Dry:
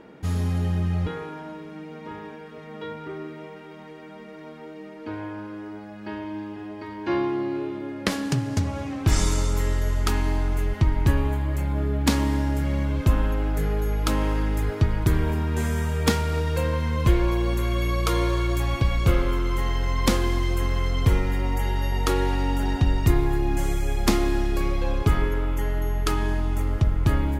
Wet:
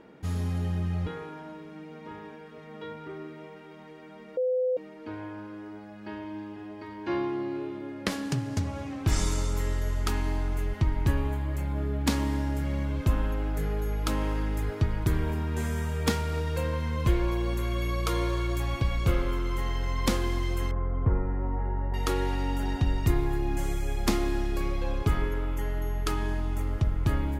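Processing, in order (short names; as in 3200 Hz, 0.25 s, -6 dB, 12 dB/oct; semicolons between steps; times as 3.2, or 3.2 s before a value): 4.37–4.77 bleep 508 Hz -18 dBFS; 20.71–21.94 LPF 1400 Hz 24 dB/oct; gain -5 dB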